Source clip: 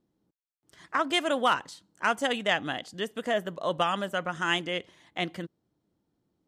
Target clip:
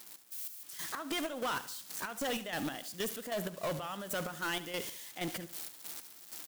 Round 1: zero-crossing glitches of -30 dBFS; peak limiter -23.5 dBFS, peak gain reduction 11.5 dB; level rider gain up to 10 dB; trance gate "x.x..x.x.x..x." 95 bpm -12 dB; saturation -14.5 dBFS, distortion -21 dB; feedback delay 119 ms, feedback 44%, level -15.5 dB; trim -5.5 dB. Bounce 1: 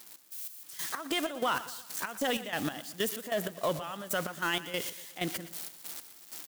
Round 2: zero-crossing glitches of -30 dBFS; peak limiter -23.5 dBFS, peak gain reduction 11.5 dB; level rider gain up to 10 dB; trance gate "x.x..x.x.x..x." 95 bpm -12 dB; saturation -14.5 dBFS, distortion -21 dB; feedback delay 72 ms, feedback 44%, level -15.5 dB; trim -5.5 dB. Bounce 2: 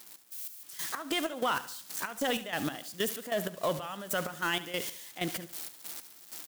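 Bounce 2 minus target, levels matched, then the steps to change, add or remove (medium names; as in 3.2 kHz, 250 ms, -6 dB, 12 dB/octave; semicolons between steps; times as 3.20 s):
saturation: distortion -13 dB
change: saturation -25.5 dBFS, distortion -8 dB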